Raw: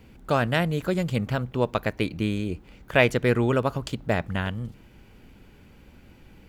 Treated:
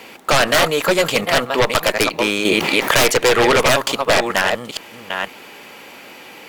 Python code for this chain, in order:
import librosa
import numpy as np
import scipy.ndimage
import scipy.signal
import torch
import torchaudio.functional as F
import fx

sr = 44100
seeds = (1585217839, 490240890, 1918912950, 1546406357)

p1 = fx.reverse_delay(x, sr, ms=480, wet_db=-10.5)
p2 = scipy.signal.sosfilt(scipy.signal.butter(2, 610.0, 'highpass', fs=sr, output='sos'), p1)
p3 = fx.notch(p2, sr, hz=1500.0, q=11.0)
p4 = fx.level_steps(p3, sr, step_db=16)
p5 = p3 + (p4 * 10.0 ** (-2.0 / 20.0))
p6 = fx.tube_stage(p5, sr, drive_db=14.0, bias=0.7)
p7 = fx.fold_sine(p6, sr, drive_db=18, ceiling_db=-9.0)
y = fx.env_flatten(p7, sr, amount_pct=70, at=(2.45, 3.0))